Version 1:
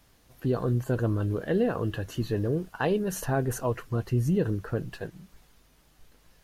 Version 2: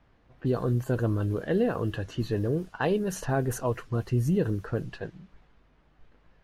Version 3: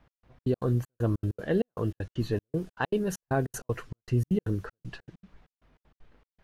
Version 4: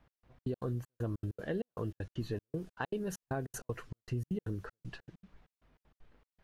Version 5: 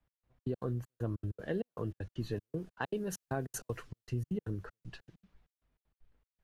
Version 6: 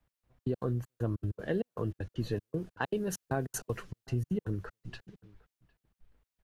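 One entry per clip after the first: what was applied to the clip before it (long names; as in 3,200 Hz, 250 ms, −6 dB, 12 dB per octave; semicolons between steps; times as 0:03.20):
low-pass that shuts in the quiet parts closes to 2,000 Hz, open at −24 dBFS
gate pattern "x..xx.x.xx" 195 BPM −60 dB
downward compressor 3 to 1, threshold −29 dBFS, peak gain reduction 7 dB; level −4.5 dB
multiband upward and downward expander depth 40%
slap from a distant wall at 130 metres, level −24 dB; level +3.5 dB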